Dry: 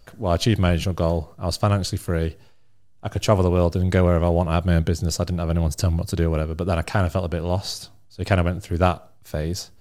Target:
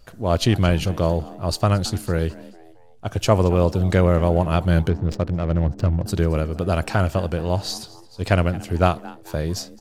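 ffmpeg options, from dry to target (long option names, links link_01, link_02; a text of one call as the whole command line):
ffmpeg -i in.wav -filter_complex "[0:a]asplit=4[link_01][link_02][link_03][link_04];[link_02]adelay=222,afreqshift=120,volume=-20dB[link_05];[link_03]adelay=444,afreqshift=240,volume=-27.5dB[link_06];[link_04]adelay=666,afreqshift=360,volume=-35.1dB[link_07];[link_01][link_05][link_06][link_07]amix=inputs=4:normalize=0,asettb=1/sr,asplit=3[link_08][link_09][link_10];[link_08]atrim=end=4.894[link_11];[link_09]atrim=start=4.89:end=6.06,asetpts=PTS-STARTPTS,afade=type=in:duration=0.004:curve=qsin,afade=type=out:start_time=1.166:duration=0.004:curve=qsin,adynamicsmooth=sensitivity=2.5:basefreq=650[link_12];[link_10]atrim=start=6.056[link_13];[link_11][link_12]acrossfade=duration=0.004:curve1=hsin:curve2=qsin[link_14];[link_14][link_13]acrossfade=duration=0.004:curve1=qsin:curve2=hsin,volume=1dB" out.wav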